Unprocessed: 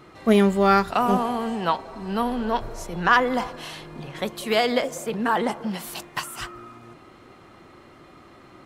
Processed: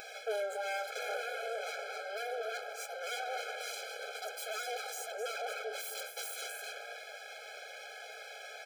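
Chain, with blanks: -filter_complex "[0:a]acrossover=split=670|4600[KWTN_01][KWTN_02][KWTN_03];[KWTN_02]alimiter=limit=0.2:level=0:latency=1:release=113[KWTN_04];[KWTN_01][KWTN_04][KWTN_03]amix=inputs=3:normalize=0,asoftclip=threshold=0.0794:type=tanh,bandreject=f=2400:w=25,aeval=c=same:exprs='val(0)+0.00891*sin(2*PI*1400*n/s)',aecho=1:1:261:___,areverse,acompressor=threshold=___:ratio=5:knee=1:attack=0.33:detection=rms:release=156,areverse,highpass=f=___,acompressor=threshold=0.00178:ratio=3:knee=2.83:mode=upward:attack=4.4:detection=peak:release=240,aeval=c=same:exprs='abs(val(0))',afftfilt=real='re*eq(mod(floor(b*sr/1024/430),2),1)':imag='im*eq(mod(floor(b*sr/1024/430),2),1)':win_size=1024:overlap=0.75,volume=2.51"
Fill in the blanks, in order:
0.299, 0.0178, 150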